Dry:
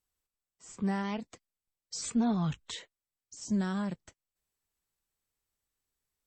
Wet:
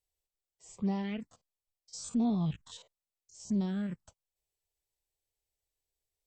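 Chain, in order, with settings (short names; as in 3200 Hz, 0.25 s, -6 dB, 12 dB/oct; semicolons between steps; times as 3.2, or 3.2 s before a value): 1.31–3.93 stepped spectrum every 50 ms; high shelf 5100 Hz -4 dB; envelope phaser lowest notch 220 Hz, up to 1600 Hz, full sweep at -26.5 dBFS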